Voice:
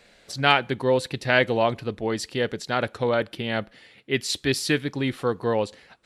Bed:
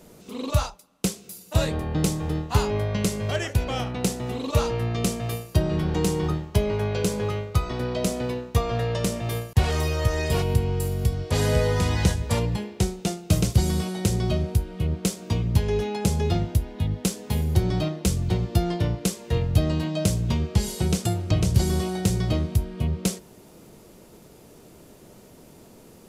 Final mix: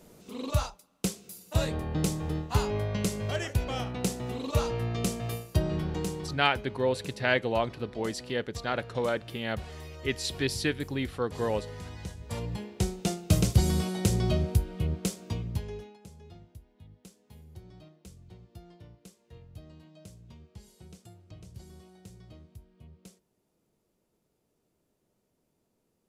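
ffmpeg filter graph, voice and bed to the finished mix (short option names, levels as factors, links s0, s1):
-filter_complex "[0:a]adelay=5950,volume=0.501[s0];[1:a]volume=3.76,afade=t=out:st=5.65:d=0.83:silence=0.199526,afade=t=in:st=12.13:d=0.99:silence=0.149624,afade=t=out:st=14.58:d=1.4:silence=0.0595662[s1];[s0][s1]amix=inputs=2:normalize=0"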